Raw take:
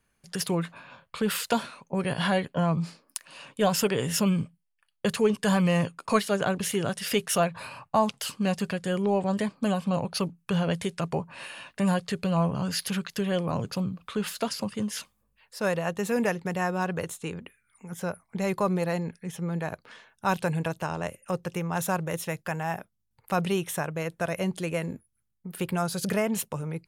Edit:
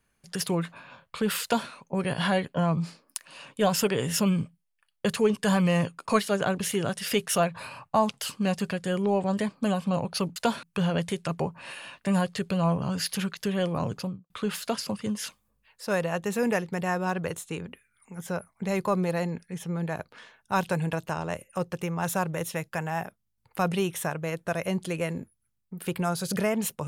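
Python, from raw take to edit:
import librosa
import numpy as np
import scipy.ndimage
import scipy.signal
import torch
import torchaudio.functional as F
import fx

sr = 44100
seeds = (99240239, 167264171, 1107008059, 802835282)

y = fx.studio_fade_out(x, sr, start_s=13.66, length_s=0.37)
y = fx.edit(y, sr, fx.duplicate(start_s=1.43, length_s=0.27, to_s=10.36), tone=tone)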